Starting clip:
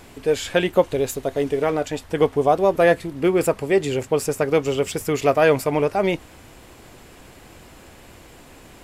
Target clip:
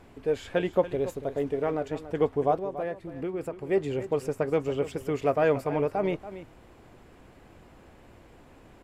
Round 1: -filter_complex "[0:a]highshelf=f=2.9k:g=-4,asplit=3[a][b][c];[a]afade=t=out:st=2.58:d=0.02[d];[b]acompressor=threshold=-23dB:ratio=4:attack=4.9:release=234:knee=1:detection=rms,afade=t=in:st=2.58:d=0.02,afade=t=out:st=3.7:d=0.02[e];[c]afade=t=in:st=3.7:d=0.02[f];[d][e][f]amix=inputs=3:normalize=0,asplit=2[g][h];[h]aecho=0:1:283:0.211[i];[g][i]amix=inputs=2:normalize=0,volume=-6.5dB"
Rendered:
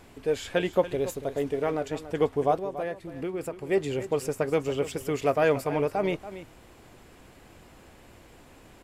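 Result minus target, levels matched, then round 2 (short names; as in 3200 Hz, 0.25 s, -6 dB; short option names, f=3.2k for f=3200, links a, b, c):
8000 Hz band +8.5 dB
-filter_complex "[0:a]highshelf=f=2.9k:g=-14,asplit=3[a][b][c];[a]afade=t=out:st=2.58:d=0.02[d];[b]acompressor=threshold=-23dB:ratio=4:attack=4.9:release=234:knee=1:detection=rms,afade=t=in:st=2.58:d=0.02,afade=t=out:st=3.7:d=0.02[e];[c]afade=t=in:st=3.7:d=0.02[f];[d][e][f]amix=inputs=3:normalize=0,asplit=2[g][h];[h]aecho=0:1:283:0.211[i];[g][i]amix=inputs=2:normalize=0,volume=-6.5dB"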